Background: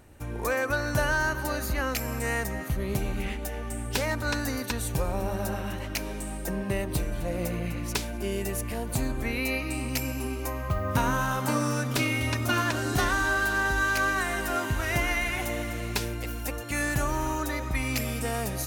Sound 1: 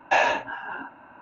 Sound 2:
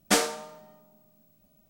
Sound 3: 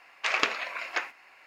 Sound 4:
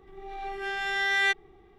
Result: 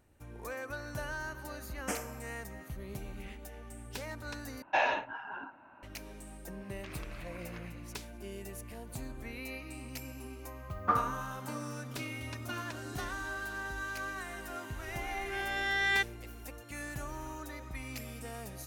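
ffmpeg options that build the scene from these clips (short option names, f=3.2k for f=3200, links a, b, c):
-filter_complex "[2:a]asplit=2[a][b];[0:a]volume=-13.5dB[c];[a]asuperstop=centerf=4000:order=4:qfactor=1.5[d];[1:a]lowpass=f=5.5k:w=0.5412,lowpass=f=5.5k:w=1.3066[e];[3:a]acompressor=threshold=-36dB:ratio=6:attack=3.2:release=140:knee=1:detection=peak[f];[b]lowpass=f=1.2k:t=q:w=14[g];[c]asplit=2[h][i];[h]atrim=end=4.624[j];[e]atrim=end=1.21,asetpts=PTS-STARTPTS,volume=-8dB[k];[i]atrim=start=5.826[l];[d]atrim=end=1.69,asetpts=PTS-STARTPTS,volume=-13.5dB,afade=t=in:d=0.004:c=hsin,afade=t=out:st=1.686:d=0.004:c=hsin,adelay=1770[m];[f]atrim=end=1.46,asetpts=PTS-STARTPTS,volume=-11dB,afade=t=in:d=0.004:c=hsin,afade=t=out:st=1.456:d=0.004:c=hsin,adelay=6600[n];[g]atrim=end=1.69,asetpts=PTS-STARTPTS,volume=-13.5dB,afade=t=in:d=0.004:c=hsin,afade=t=out:st=1.686:d=0.004:c=hsin,adelay=10770[o];[4:a]atrim=end=1.78,asetpts=PTS-STARTPTS,volume=-4.5dB,afade=t=in:d=0.004:c=hsin,afade=t=out:st=1.776:d=0.004:c=hsin,adelay=14700[p];[j][k]acrossfade=d=0.004:c1=hsin:c2=hsin[q];[q][l]acrossfade=d=0.004:c1=hsin:c2=hsin[r];[r][m][n][o][p]amix=inputs=5:normalize=0"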